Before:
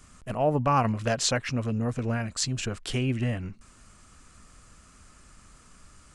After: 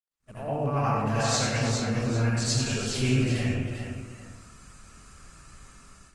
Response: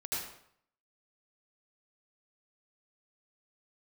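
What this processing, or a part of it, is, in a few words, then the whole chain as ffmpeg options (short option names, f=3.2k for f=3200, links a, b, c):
speakerphone in a meeting room: -filter_complex "[0:a]aecho=1:1:95|234|353|408|801:0.473|0.126|0.168|0.473|0.158[a];[1:a]atrim=start_sample=2205[b];[a][b]afir=irnorm=-1:irlink=0,dynaudnorm=f=210:g=11:m=7dB,agate=range=-44dB:threshold=-44dB:ratio=16:detection=peak,volume=-8dB" -ar 48000 -c:a libopus -b:a 32k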